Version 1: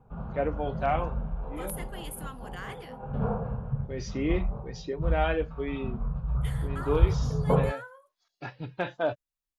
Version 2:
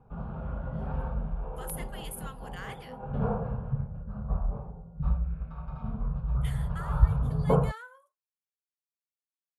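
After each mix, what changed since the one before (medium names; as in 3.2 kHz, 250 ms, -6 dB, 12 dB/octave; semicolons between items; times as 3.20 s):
first voice: muted; second voice: add high-pass 1 kHz 6 dB/octave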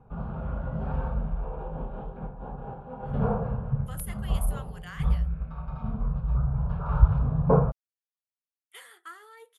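speech: entry +2.30 s; background +3.0 dB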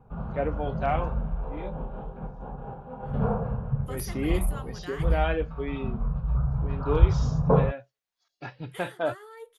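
first voice: unmuted; second voice: remove high-pass 1 kHz 6 dB/octave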